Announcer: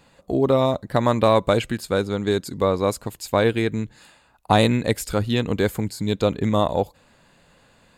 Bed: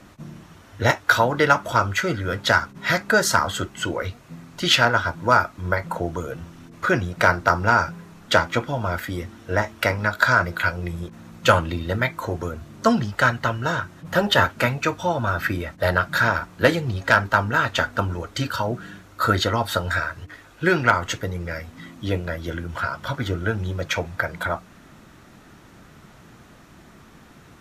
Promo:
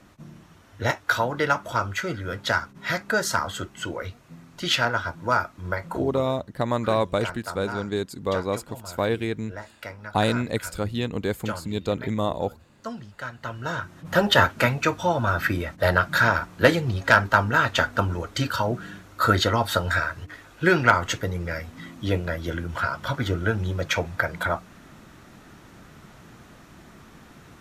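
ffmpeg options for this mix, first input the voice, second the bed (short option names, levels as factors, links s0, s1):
-filter_complex "[0:a]adelay=5650,volume=0.531[s0];[1:a]volume=3.55,afade=t=out:st=5.95:d=0.45:silence=0.281838,afade=t=in:st=13.32:d=0.88:silence=0.149624[s1];[s0][s1]amix=inputs=2:normalize=0"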